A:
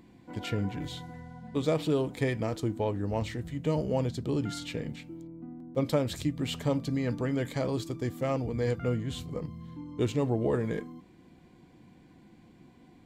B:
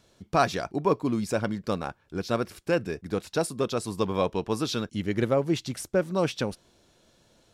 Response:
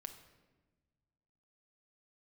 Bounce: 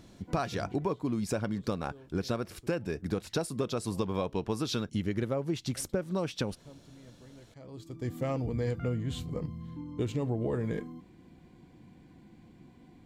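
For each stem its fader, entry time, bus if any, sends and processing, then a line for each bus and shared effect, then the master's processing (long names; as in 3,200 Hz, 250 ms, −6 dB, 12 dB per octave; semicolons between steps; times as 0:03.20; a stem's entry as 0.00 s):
−1.5 dB, 0.00 s, no send, automatic ducking −24 dB, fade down 1.90 s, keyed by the second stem
+1.5 dB, 0.00 s, no send, no processing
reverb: not used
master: low-shelf EQ 210 Hz +5 dB; downward compressor 12 to 1, threshold −27 dBFS, peak gain reduction 13.5 dB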